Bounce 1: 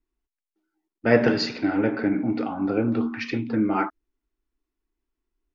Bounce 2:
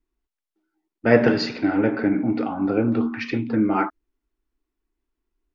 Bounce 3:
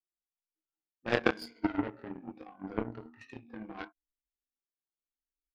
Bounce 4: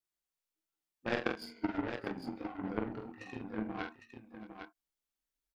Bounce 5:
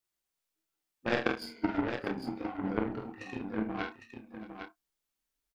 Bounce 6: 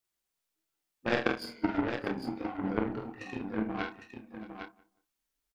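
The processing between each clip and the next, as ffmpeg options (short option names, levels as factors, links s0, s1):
-af "highshelf=f=4700:g=-6.5,volume=1.33"
-af "afftfilt=real='re*pow(10,20/40*sin(2*PI*(1.8*log(max(b,1)*sr/1024/100)/log(2)-(-0.83)*(pts-256)/sr)))':imag='im*pow(10,20/40*sin(2*PI*(1.8*log(max(b,1)*sr/1024/100)/log(2)-(-0.83)*(pts-256)/sr)))':win_size=1024:overlap=0.75,flanger=delay=19:depth=5.2:speed=1.2,aeval=exprs='0.668*(cos(1*acos(clip(val(0)/0.668,-1,1)))-cos(1*PI/2))+0.211*(cos(3*acos(clip(val(0)/0.668,-1,1)))-cos(3*PI/2))':c=same,volume=0.75"
-filter_complex "[0:a]acompressor=threshold=0.02:ratio=3,asplit=2[s0][s1];[s1]aecho=0:1:46|625|805:0.501|0.112|0.422[s2];[s0][s2]amix=inputs=2:normalize=0,volume=1.26"
-filter_complex "[0:a]asplit=2[s0][s1];[s1]adelay=31,volume=0.316[s2];[s0][s2]amix=inputs=2:normalize=0,volume=1.58"
-filter_complex "[0:a]asplit=2[s0][s1];[s1]adelay=181,lowpass=f=1600:p=1,volume=0.0891,asplit=2[s2][s3];[s3]adelay=181,lowpass=f=1600:p=1,volume=0.25[s4];[s0][s2][s4]amix=inputs=3:normalize=0,volume=1.12"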